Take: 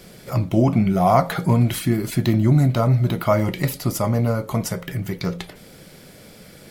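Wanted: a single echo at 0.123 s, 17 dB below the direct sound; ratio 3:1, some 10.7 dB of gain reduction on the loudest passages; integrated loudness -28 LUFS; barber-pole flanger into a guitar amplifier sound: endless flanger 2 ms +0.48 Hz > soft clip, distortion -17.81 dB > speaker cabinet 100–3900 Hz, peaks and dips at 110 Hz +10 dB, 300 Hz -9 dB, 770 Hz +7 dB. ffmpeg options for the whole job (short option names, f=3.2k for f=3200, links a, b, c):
-filter_complex "[0:a]acompressor=threshold=-27dB:ratio=3,aecho=1:1:123:0.141,asplit=2[a][b];[b]adelay=2,afreqshift=0.48[c];[a][c]amix=inputs=2:normalize=1,asoftclip=threshold=-23.5dB,highpass=100,equalizer=f=110:t=q:w=4:g=10,equalizer=f=300:t=q:w=4:g=-9,equalizer=f=770:t=q:w=4:g=7,lowpass=f=3.9k:w=0.5412,lowpass=f=3.9k:w=1.3066,volume=4dB"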